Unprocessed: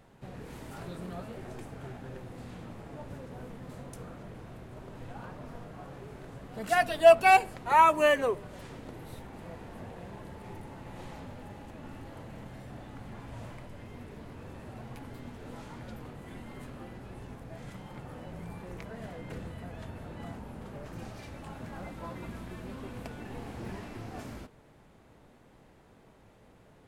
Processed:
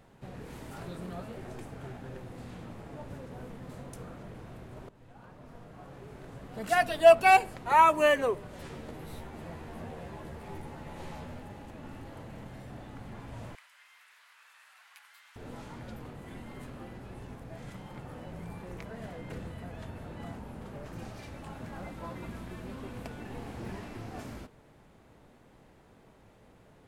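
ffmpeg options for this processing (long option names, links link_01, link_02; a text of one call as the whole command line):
ffmpeg -i in.wav -filter_complex "[0:a]asettb=1/sr,asplit=3[link_01][link_02][link_03];[link_01]atrim=end=8.584[link_04];[link_02]atrim=start=8.58:end=11.4,asetpts=PTS-STARTPTS,afade=type=in:duration=0.004:curve=qsin,afade=type=out:start_time=2.816:duration=0.004:curve=qsin,asplit=2[link_05][link_06];[link_06]adelay=13,volume=-3dB[link_07];[link_05][link_07]amix=inputs=2:normalize=0,atrim=end_sample=124362[link_08];[link_03]atrim=start=11.396[link_09];[link_04][link_08]acrossfade=duration=0.004:curve1=hsin:curve2=qsin[link_10];[link_10][link_09]acrossfade=duration=0.004:curve1=qsin:curve2=hsin,asettb=1/sr,asplit=3[link_11][link_12][link_13];[link_11]atrim=end=13.554[link_14];[link_12]atrim=start=13.55:end=15.36,asetpts=PTS-STARTPTS,afade=type=in:duration=0.004:curve=qsin,afade=type=out:start_time=1.806:duration=0.004:curve=qsin,highpass=frequency=1300:width=0.5412,highpass=frequency=1300:width=1.3066[link_15];[link_13]atrim=start=15.356[link_16];[link_14][link_15]acrossfade=duration=0.004:curve1=hsin:curve2=qsin[link_17];[link_17][link_16]acrossfade=duration=0.004:curve1=qsin:curve2=hsin,asplit=2[link_18][link_19];[link_18]atrim=end=4.89,asetpts=PTS-STARTPTS,afade=type=out:start_time=4.886:duration=0.004:curve=hsin:silence=0.177828[link_20];[link_19]atrim=start=4.89,asetpts=PTS-STARTPTS,afade=type=in:duration=1.55:silence=0.177828[link_21];[link_20][link_21]concat=n=2:v=0:a=1" out.wav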